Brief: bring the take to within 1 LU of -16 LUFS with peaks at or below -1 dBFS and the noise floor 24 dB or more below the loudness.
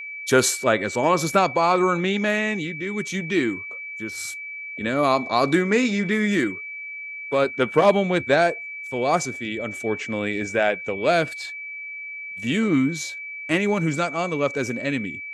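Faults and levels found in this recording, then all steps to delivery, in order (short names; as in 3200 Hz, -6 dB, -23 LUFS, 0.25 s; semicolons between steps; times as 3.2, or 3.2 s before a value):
steady tone 2300 Hz; tone level -32 dBFS; loudness -23.0 LUFS; peak -4.5 dBFS; loudness target -16.0 LUFS
-> notch 2300 Hz, Q 30; gain +7 dB; limiter -1 dBFS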